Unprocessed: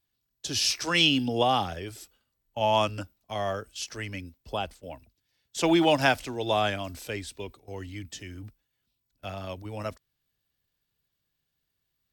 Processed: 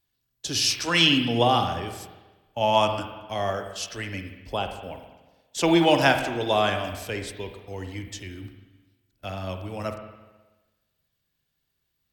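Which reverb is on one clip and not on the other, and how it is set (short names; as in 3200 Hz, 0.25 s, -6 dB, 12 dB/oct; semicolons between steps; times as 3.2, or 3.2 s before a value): spring tank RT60 1.2 s, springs 42/59 ms, chirp 55 ms, DRR 6 dB; gain +2.5 dB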